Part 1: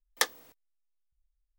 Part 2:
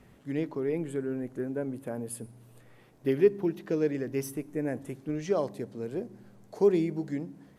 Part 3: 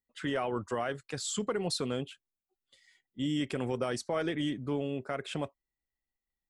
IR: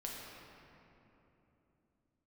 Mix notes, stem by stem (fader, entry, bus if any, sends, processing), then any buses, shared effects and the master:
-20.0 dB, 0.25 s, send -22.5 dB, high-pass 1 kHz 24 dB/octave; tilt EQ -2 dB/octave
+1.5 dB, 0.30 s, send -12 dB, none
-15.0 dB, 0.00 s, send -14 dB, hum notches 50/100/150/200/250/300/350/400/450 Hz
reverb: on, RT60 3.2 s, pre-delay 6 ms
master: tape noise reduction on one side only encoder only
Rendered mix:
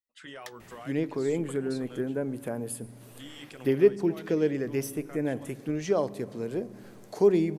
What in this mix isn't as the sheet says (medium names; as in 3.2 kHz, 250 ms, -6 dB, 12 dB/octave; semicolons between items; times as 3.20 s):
stem 2: entry 0.30 s -> 0.60 s; reverb return -6.5 dB